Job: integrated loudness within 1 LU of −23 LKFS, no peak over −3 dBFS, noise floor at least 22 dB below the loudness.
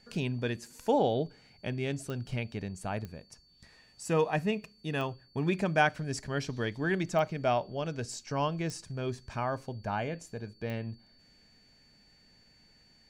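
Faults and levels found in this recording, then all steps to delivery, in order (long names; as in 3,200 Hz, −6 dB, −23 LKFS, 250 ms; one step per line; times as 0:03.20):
number of clicks 7; interfering tone 4,500 Hz; level of the tone −62 dBFS; integrated loudness −33.0 LKFS; sample peak −11.5 dBFS; target loudness −23.0 LKFS
→ click removal
notch filter 4,500 Hz, Q 30
level +10 dB
brickwall limiter −3 dBFS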